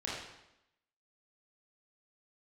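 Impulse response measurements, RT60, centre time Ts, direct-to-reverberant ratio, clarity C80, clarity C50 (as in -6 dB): 0.85 s, 66 ms, -7.0 dB, 3.5 dB, 0.0 dB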